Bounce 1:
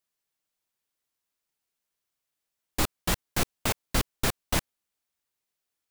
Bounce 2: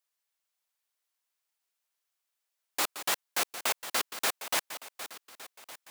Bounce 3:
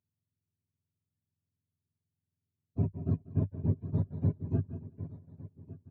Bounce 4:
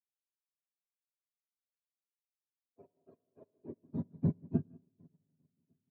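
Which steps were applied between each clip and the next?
backward echo that repeats 581 ms, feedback 50%, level -12 dB; high-pass 610 Hz 12 dB/octave
spectrum inverted on a logarithmic axis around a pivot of 470 Hz; rippled EQ curve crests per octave 1.5, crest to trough 9 dB; delay 192 ms -19 dB
high-pass sweep 490 Hz -> 190 Hz, 3.47–4.07 s; on a send at -10.5 dB: reverberation RT60 2.0 s, pre-delay 6 ms; on the sum: upward expansion 2.5:1, over -44 dBFS

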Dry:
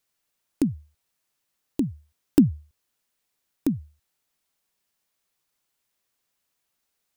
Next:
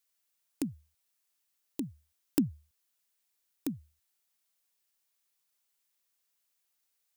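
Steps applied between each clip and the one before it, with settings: tilt EQ +2 dB/octave; trim -7.5 dB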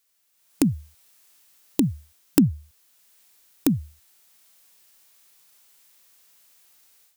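in parallel at -1.5 dB: compression, threshold -38 dBFS, peak gain reduction 15 dB; on the sum: harmonic-percussive split harmonic +5 dB; level rider gain up to 12.5 dB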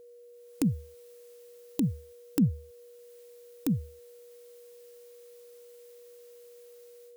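peak limiter -11 dBFS, peak gain reduction 9 dB; whistle 480 Hz -46 dBFS; trim -3.5 dB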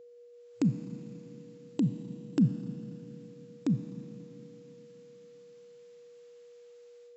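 treble shelf 5.1 kHz -9 dB; Schroeder reverb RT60 3.5 s, combs from 28 ms, DRR 9 dB; FFT band-pass 110–7700 Hz

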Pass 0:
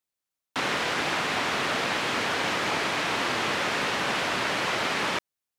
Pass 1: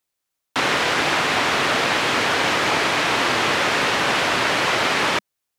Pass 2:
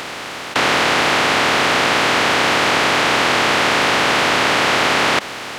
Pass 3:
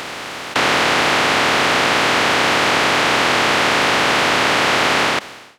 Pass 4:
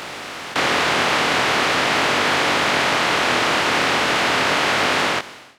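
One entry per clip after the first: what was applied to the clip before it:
peaking EQ 200 Hz -4 dB 0.4 oct; trim +7.5 dB
spectral levelling over time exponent 0.2; trim -1.5 dB
fade out at the end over 0.58 s
chorus 0.4 Hz, delay 20 ms, depth 5.5 ms

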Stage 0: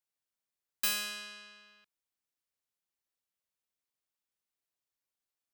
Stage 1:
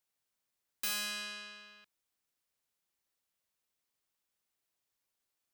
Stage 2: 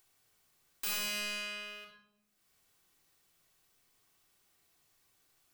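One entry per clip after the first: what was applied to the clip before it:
in parallel at -2.5 dB: compression, threshold -40 dBFS, peak gain reduction 12.5 dB; on the sum: saturation -31.5 dBFS, distortion -8 dB
waveshaping leveller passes 3; upward compressor, threshold -54 dBFS; simulated room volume 2300 m³, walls furnished, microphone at 3.5 m; trim -3 dB

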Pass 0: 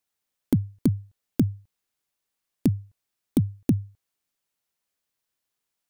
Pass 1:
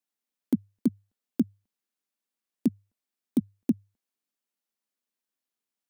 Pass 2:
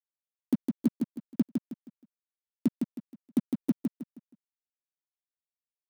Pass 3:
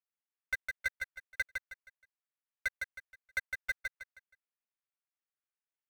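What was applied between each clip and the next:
resonant low shelf 160 Hz -10.5 dB, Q 3; trim -7.5 dB
crossover distortion -41 dBFS; feedback delay 158 ms, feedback 32%, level -4.5 dB; trim -1.5 dB
sample-and-hold 21×; ring modulator 1.8 kHz; trim -6 dB

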